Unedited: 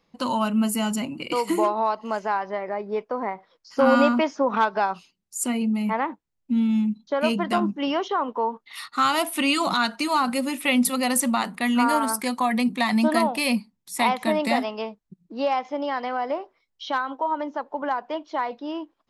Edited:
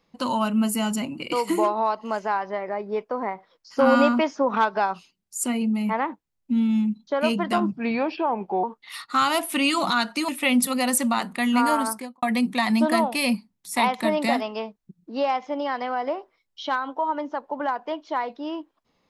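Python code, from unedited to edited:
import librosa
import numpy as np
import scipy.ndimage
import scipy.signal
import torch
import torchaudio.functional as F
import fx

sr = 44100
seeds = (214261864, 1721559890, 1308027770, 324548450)

y = fx.studio_fade_out(x, sr, start_s=12.04, length_s=0.41)
y = fx.edit(y, sr, fx.speed_span(start_s=7.72, length_s=0.75, speed=0.82),
    fx.cut(start_s=10.12, length_s=0.39), tone=tone)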